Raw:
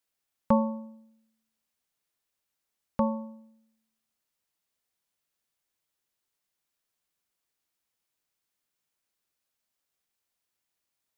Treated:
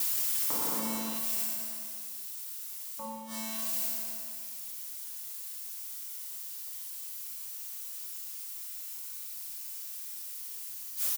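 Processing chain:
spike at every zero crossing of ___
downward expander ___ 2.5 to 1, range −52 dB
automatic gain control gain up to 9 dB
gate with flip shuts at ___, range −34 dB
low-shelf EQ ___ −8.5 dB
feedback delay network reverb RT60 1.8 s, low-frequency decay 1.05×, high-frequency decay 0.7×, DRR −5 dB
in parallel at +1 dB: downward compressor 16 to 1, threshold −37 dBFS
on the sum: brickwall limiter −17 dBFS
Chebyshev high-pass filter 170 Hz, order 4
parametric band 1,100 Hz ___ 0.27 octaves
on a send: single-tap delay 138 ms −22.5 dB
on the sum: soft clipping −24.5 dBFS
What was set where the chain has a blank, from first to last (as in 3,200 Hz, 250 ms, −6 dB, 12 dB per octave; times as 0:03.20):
−23 dBFS, −31 dBFS, −15 dBFS, 240 Hz, +6 dB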